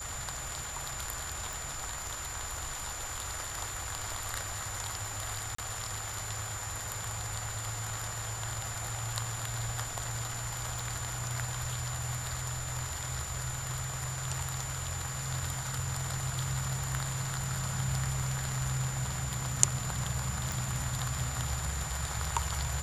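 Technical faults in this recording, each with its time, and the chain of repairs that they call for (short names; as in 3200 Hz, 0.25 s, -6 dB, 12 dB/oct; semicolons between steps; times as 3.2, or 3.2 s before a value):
tone 7100 Hz -40 dBFS
1.53 pop
5.55–5.58 gap 34 ms
10.79 pop
20.52 pop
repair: de-click; notch 7100 Hz, Q 30; interpolate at 5.55, 34 ms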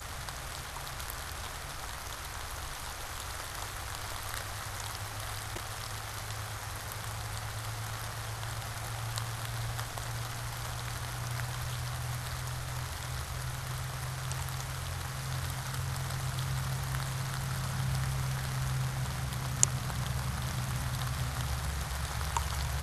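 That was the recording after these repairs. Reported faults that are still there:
none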